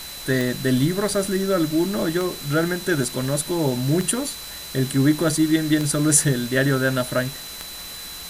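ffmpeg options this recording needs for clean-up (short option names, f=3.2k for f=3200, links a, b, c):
-af "adeclick=t=4,bandreject=f=4k:w=30,afwtdn=0.016"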